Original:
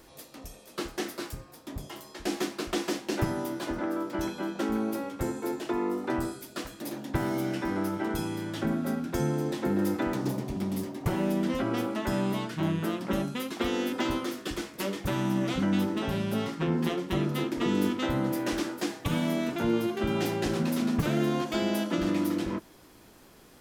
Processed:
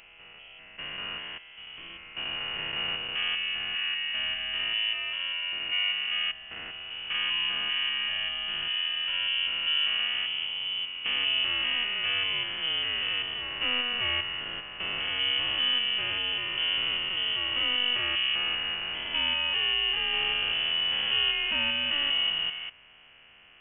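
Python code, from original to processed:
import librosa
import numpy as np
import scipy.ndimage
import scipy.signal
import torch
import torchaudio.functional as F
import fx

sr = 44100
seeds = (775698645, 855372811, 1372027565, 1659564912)

y = fx.spec_steps(x, sr, hold_ms=200)
y = fx.highpass(y, sr, hz=260.0, slope=6)
y = fx.freq_invert(y, sr, carrier_hz=3200)
y = y * librosa.db_to_amplitude(4.0)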